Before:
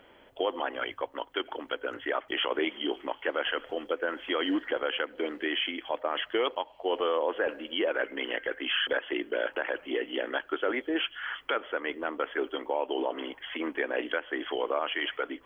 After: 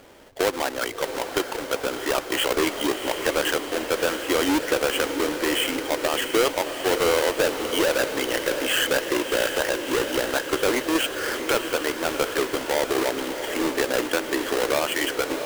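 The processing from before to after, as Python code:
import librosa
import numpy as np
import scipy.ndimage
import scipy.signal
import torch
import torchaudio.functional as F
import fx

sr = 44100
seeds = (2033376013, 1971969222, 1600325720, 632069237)

y = fx.halfwave_hold(x, sr)
y = fx.echo_diffused(y, sr, ms=674, feedback_pct=64, wet_db=-8)
y = y * librosa.db_to_amplitude(2.5)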